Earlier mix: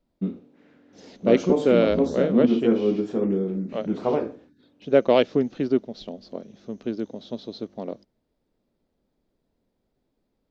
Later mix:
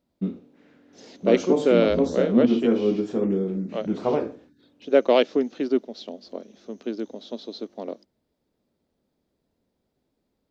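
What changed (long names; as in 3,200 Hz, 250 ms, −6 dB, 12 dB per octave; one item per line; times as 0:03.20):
second voice: add high-pass filter 230 Hz 24 dB per octave
master: add high-shelf EQ 5,000 Hz +5.5 dB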